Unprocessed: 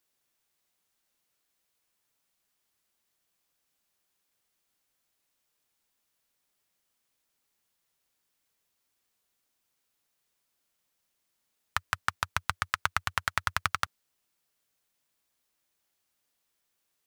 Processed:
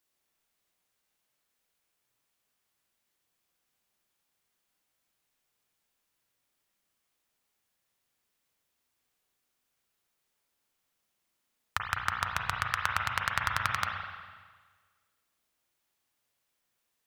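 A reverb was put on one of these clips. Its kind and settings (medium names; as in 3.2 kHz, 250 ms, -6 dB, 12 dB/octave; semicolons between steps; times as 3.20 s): spring tank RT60 1.5 s, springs 33/41/50 ms, chirp 65 ms, DRR 1 dB; trim -2 dB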